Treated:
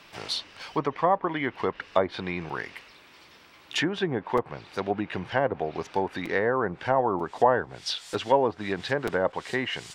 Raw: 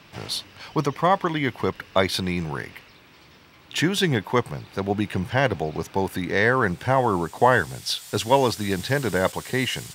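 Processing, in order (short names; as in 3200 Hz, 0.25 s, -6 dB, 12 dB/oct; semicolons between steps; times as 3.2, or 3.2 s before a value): treble ducked by the level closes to 940 Hz, closed at -17 dBFS; bell 110 Hz -11.5 dB 2.4 oct; crackling interface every 0.94 s, samples 256, repeat, from 0.61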